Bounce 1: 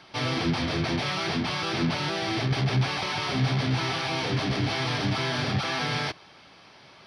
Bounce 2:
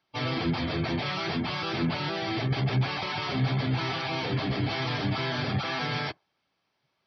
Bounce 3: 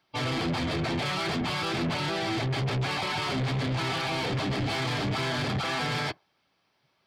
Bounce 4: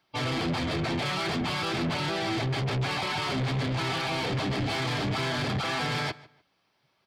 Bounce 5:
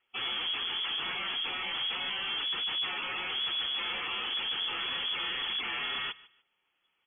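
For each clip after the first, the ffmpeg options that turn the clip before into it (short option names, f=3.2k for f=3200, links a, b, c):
-af "afftdn=nr=24:nf=-36,volume=-1.5dB"
-af "asoftclip=type=tanh:threshold=-30.5dB,volume=5dB"
-filter_complex "[0:a]asplit=2[a][b];[b]adelay=149,lowpass=f=4.2k:p=1,volume=-20dB,asplit=2[c][d];[d]adelay=149,lowpass=f=4.2k:p=1,volume=0.26[e];[a][c][e]amix=inputs=3:normalize=0"
-af "lowpass=f=3k:t=q:w=0.5098,lowpass=f=3k:t=q:w=0.6013,lowpass=f=3k:t=q:w=0.9,lowpass=f=3k:t=q:w=2.563,afreqshift=-3500,volume=-4.5dB"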